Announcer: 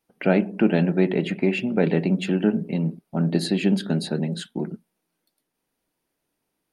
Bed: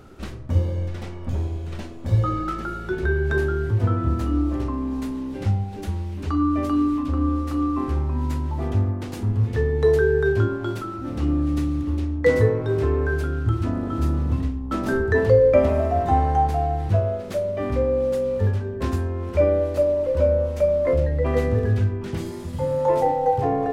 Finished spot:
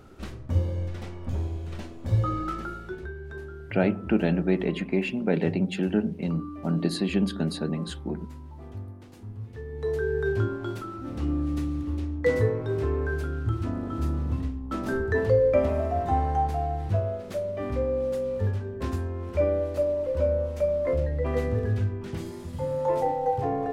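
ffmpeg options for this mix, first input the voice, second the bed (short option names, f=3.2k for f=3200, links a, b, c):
-filter_complex "[0:a]adelay=3500,volume=-4dB[a];[1:a]volume=7.5dB,afade=t=out:st=2.58:d=0.54:silence=0.223872,afade=t=in:st=9.64:d=0.71:silence=0.266073[b];[a][b]amix=inputs=2:normalize=0"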